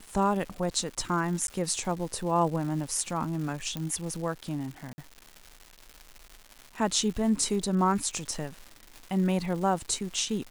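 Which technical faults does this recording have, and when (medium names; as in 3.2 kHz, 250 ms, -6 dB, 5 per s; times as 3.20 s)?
crackle 360 per s -37 dBFS
1.47–1.48 s: dropout 12 ms
3.77 s: pop -19 dBFS
4.93–4.98 s: dropout 50 ms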